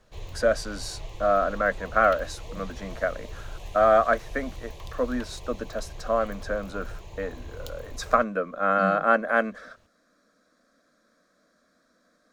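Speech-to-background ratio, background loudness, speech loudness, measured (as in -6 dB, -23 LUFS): 16.5 dB, -42.5 LUFS, -26.0 LUFS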